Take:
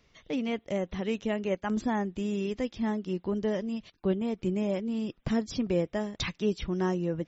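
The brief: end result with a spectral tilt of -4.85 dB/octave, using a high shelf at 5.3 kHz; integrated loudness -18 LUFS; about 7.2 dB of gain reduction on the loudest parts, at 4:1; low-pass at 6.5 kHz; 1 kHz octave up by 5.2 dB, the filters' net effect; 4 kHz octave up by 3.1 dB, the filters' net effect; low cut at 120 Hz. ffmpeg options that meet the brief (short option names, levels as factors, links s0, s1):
-af "highpass=120,lowpass=6500,equalizer=f=1000:t=o:g=6.5,equalizer=f=4000:t=o:g=6,highshelf=f=5300:g=-5,acompressor=threshold=0.0282:ratio=4,volume=7.5"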